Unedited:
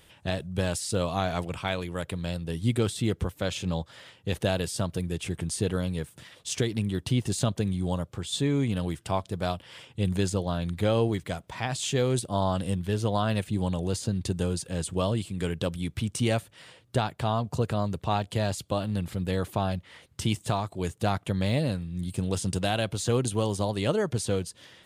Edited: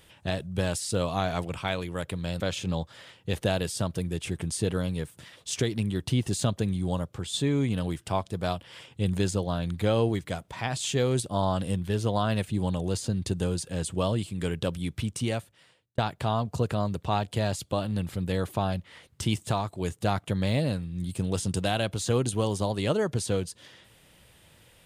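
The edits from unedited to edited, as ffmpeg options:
ffmpeg -i in.wav -filter_complex "[0:a]asplit=3[link_01][link_02][link_03];[link_01]atrim=end=2.402[link_04];[link_02]atrim=start=3.388:end=16.97,asetpts=PTS-STARTPTS,afade=type=out:start_time=12.552:duration=1.03[link_05];[link_03]atrim=start=16.97,asetpts=PTS-STARTPTS,afade=type=in:duration=0.004:curve=hsin[link_06];[link_05][link_06]concat=n=2:v=0:a=1[link_07];[link_04][link_07]acrossfade=duration=0.004:curve1=hsin:curve2=hsin" out.wav

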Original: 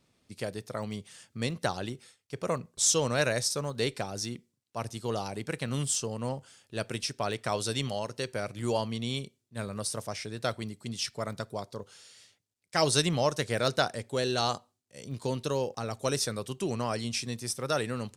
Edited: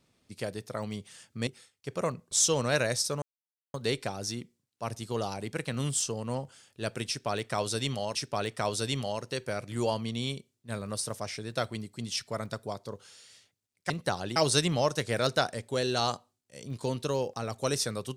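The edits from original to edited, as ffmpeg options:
ffmpeg -i in.wav -filter_complex "[0:a]asplit=6[link_01][link_02][link_03][link_04][link_05][link_06];[link_01]atrim=end=1.472[link_07];[link_02]atrim=start=1.928:end=3.68,asetpts=PTS-STARTPTS,afade=type=out:start_time=1.748:duration=0.004:curve=hsin,apad=pad_dur=0.52[link_08];[link_03]atrim=start=3.68:end=8.092,asetpts=PTS-STARTPTS,afade=type=in:duration=0.004:curve=hsin[link_09];[link_04]atrim=start=7.018:end=12.772[link_10];[link_05]atrim=start=1.468:end=1.932[link_11];[link_06]atrim=start=12.768[link_12];[link_08][link_09]concat=n=2:v=0:a=1[link_13];[link_07][link_13]acrossfade=duration=0.004:curve1=hsin:curve2=hsin[link_14];[link_14][link_10]acrossfade=duration=0.004:curve1=hsin:curve2=hsin[link_15];[link_15][link_11]acrossfade=duration=0.004:curve1=hsin:curve2=hsin[link_16];[link_16][link_12]acrossfade=duration=0.004:curve1=hsin:curve2=hsin" out.wav

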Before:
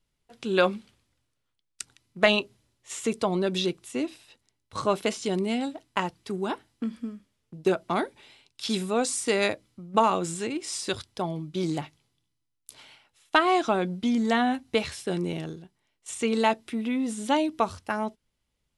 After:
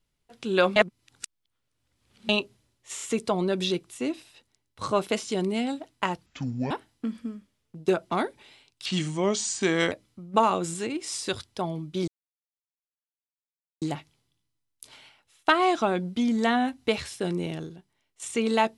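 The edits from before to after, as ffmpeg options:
ffmpeg -i in.wav -filter_complex "[0:a]asplit=10[link_01][link_02][link_03][link_04][link_05][link_06][link_07][link_08][link_09][link_10];[link_01]atrim=end=0.762[link_11];[link_02]atrim=start=0.758:end=2.292,asetpts=PTS-STARTPTS,areverse[link_12];[link_03]atrim=start=2.288:end=2.982[link_13];[link_04]atrim=start=2.948:end=2.982[link_14];[link_05]atrim=start=2.948:end=6.204[link_15];[link_06]atrim=start=6.2:end=6.49,asetpts=PTS-STARTPTS,asetrate=28665,aresample=44100,atrim=end_sample=19675,asetpts=PTS-STARTPTS[link_16];[link_07]atrim=start=6.486:end=8.644[link_17];[link_08]atrim=start=8.64:end=9.52,asetpts=PTS-STARTPTS,asetrate=36603,aresample=44100[link_18];[link_09]atrim=start=9.516:end=11.68,asetpts=PTS-STARTPTS,afade=type=out:start_time=2.16:duration=0.004:curve=hsin,apad=pad_dur=1.74[link_19];[link_10]atrim=start=11.68,asetpts=PTS-STARTPTS,afade=type=in:duration=0.004:curve=hsin[link_20];[link_11][link_12]acrossfade=duration=0.004:curve1=hsin:curve2=hsin[link_21];[link_21][link_13]acrossfade=duration=0.004:curve1=hsin:curve2=hsin[link_22];[link_22][link_14]acrossfade=duration=0.004:curve1=hsin:curve2=hsin[link_23];[link_23][link_15]acrossfade=duration=0.004:curve1=hsin:curve2=hsin[link_24];[link_24][link_16]acrossfade=duration=0.004:curve1=hsin:curve2=hsin[link_25];[link_25][link_17]acrossfade=duration=0.004:curve1=hsin:curve2=hsin[link_26];[link_26][link_18]acrossfade=duration=0.004:curve1=hsin:curve2=hsin[link_27];[link_19][link_20]concat=n=2:v=0:a=1[link_28];[link_27][link_28]acrossfade=duration=0.004:curve1=hsin:curve2=hsin" out.wav

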